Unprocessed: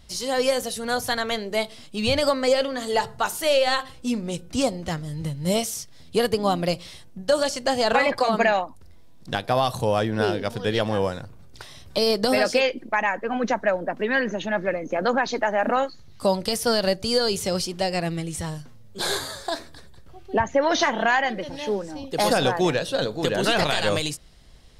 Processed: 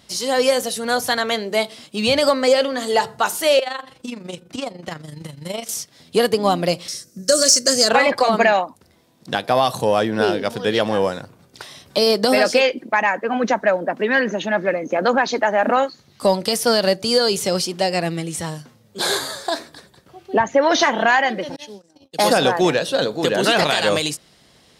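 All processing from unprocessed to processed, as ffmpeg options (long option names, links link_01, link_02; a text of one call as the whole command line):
ffmpeg -i in.wav -filter_complex "[0:a]asettb=1/sr,asplit=3[link_01][link_02][link_03];[link_01]atrim=end=3.594[link_04];[link_02]atrim=start=3.59:end=5.69,asetpts=PTS-STARTPTS,afade=type=in:duration=0.004:curve=qsin,afade=type=out:start_time=2.096:duration=0.004:curve=qsin,acrossover=split=720|3700[link_05][link_06][link_07];[link_05]acompressor=threshold=-32dB:ratio=4[link_08];[link_06]acompressor=threshold=-31dB:ratio=4[link_09];[link_07]acompressor=threshold=-47dB:ratio=4[link_10];[link_08][link_09][link_10]amix=inputs=3:normalize=0,tremolo=f=24:d=0.667[link_11];[link_03]atrim=start=5.686[link_12];[link_04][link_11]acrossfade=duration=0.004:curve1=hsin:curve2=qsin[link_13];[link_13][link_12]acrossfade=duration=0.004:curve1=qsin:curve2=hsin,asettb=1/sr,asplit=3[link_14][link_15][link_16];[link_14]atrim=end=6.884[link_17];[link_15]atrim=start=6.88:end=7.89,asetpts=PTS-STARTPTS,afade=type=in:duration=0.004:curve=qsin,afade=type=out:start_time=1.006:duration=0.004:curve=qsin,asuperstop=centerf=860:order=4:qfactor=1.5,highshelf=frequency=4300:width_type=q:width=3:gain=10[link_18];[link_16]atrim=start=7.886[link_19];[link_17][link_18]acrossfade=duration=0.004:curve1=hsin:curve2=qsin[link_20];[link_20][link_19]acrossfade=duration=0.004:curve1=qsin:curve2=hsin,asettb=1/sr,asplit=3[link_21][link_22][link_23];[link_21]atrim=end=21.564[link_24];[link_22]atrim=start=21.56:end=22.19,asetpts=PTS-STARTPTS,afade=type=in:duration=0.004:curve=qsin,afade=type=out:start_time=0.626:duration=0.004:curve=qsin,bandreject=frequency=1100:width=18,acrossover=split=150|3000[link_25][link_26][link_27];[link_26]acompressor=threshold=-42dB:ratio=4:attack=3.2:release=140:knee=2.83:detection=peak[link_28];[link_25][link_28][link_27]amix=inputs=3:normalize=0,agate=range=-38dB:threshold=-38dB:ratio=16:release=100:detection=peak[link_29];[link_23]atrim=start=22.186[link_30];[link_24][link_29]acrossfade=duration=0.004:curve1=hsin:curve2=qsin[link_31];[link_31][link_30]acrossfade=duration=0.004:curve1=qsin:curve2=hsin,highpass=170,acontrast=33" out.wav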